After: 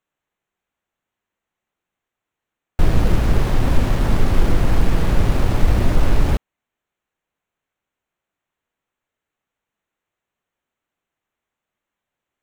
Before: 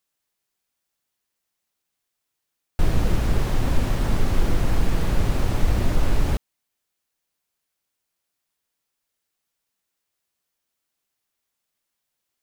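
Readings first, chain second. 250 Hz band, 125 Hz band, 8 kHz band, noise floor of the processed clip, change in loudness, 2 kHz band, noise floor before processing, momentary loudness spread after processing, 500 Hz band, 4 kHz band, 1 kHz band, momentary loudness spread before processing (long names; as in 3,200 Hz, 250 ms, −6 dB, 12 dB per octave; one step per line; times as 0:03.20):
+5.0 dB, +5.0 dB, +1.0 dB, −85 dBFS, +5.0 dB, +4.5 dB, −81 dBFS, 2 LU, +5.0 dB, +3.0 dB, +5.0 dB, 2 LU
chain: adaptive Wiener filter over 9 samples
level +5 dB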